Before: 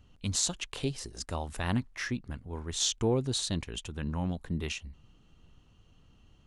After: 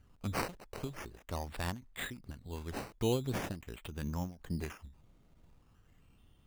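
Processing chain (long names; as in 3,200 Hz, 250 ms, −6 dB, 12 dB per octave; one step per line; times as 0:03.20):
sample-and-hold swept by an LFO 10×, swing 60% 0.43 Hz
every ending faded ahead of time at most 150 dB per second
level −3.5 dB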